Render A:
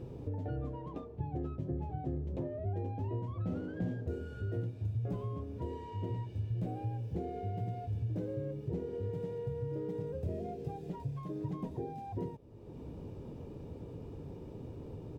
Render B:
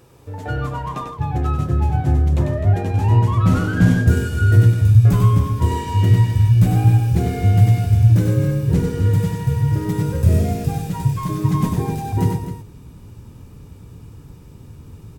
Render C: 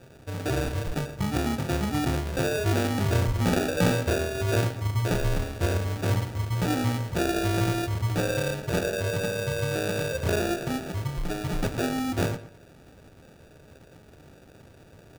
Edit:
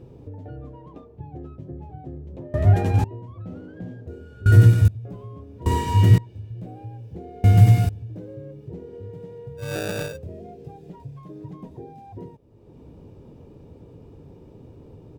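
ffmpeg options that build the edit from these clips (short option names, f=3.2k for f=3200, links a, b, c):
-filter_complex "[1:a]asplit=4[a][b][c][d];[0:a]asplit=6[e][f][g][h][i][j];[e]atrim=end=2.542[k];[a]atrim=start=2.538:end=3.042[l];[f]atrim=start=3.038:end=4.462[m];[b]atrim=start=4.458:end=4.882[n];[g]atrim=start=4.878:end=5.662[o];[c]atrim=start=5.658:end=6.182[p];[h]atrim=start=6.178:end=7.442[q];[d]atrim=start=7.438:end=7.892[r];[i]atrim=start=7.888:end=9.73[s];[2:a]atrim=start=9.57:end=10.19[t];[j]atrim=start=10.03[u];[k][l]acrossfade=d=0.004:c1=hsin:c2=hsin[v];[v][m]acrossfade=d=0.004:c1=hsin:c2=hsin[w];[w][n]acrossfade=d=0.004:c1=hsin:c2=hsin[x];[x][o]acrossfade=d=0.004:c1=hsin:c2=hsin[y];[y][p]acrossfade=d=0.004:c1=hsin:c2=hsin[z];[z][q]acrossfade=d=0.004:c1=hsin:c2=hsin[aa];[aa][r]acrossfade=d=0.004:c1=hsin:c2=hsin[ab];[ab][s]acrossfade=d=0.004:c1=hsin:c2=hsin[ac];[ac][t]acrossfade=d=0.16:c1=tri:c2=tri[ad];[ad][u]acrossfade=d=0.16:c1=tri:c2=tri"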